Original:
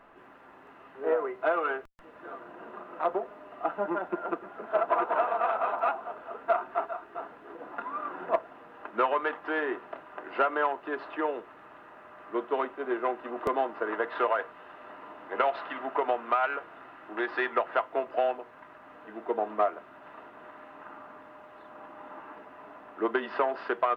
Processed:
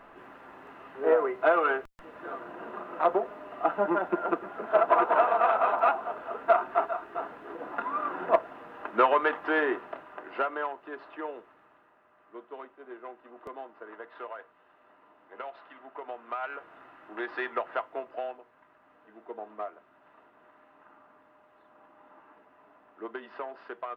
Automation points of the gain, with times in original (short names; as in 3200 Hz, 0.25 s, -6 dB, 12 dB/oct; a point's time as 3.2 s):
9.63 s +4 dB
10.79 s -7 dB
11.41 s -7 dB
12 s -14 dB
15.94 s -14 dB
16.74 s -4 dB
17.74 s -4 dB
18.49 s -11 dB